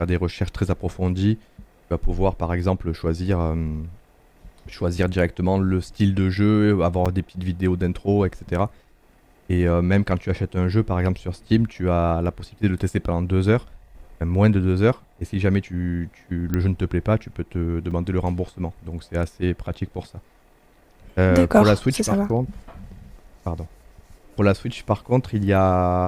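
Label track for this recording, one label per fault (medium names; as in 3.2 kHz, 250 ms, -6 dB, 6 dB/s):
7.050000	7.060000	dropout 6.5 ms
16.540000	16.540000	pop -11 dBFS
17.910000	17.910000	dropout 4.7 ms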